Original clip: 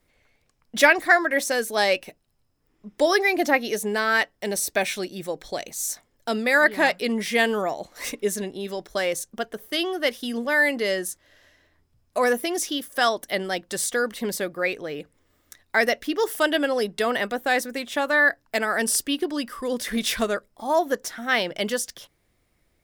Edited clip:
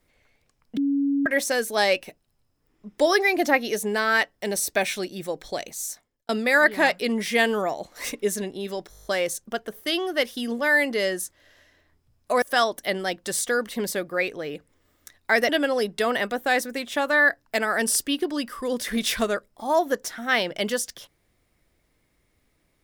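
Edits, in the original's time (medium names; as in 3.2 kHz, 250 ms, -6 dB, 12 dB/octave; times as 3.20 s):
0.77–1.26 s: bleep 280 Hz -19.5 dBFS
5.63–6.29 s: fade out
8.91 s: stutter 0.02 s, 8 plays
12.28–12.87 s: delete
15.94–16.49 s: delete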